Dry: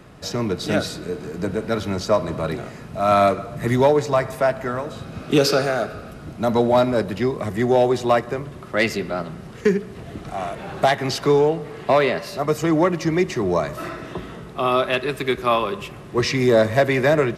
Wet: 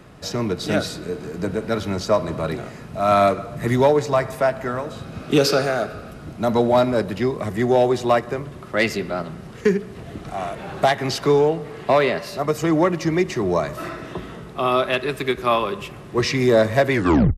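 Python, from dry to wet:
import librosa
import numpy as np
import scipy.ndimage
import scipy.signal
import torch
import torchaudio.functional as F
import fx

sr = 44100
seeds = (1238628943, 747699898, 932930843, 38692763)

y = fx.tape_stop_end(x, sr, length_s=0.44)
y = fx.end_taper(y, sr, db_per_s=370.0)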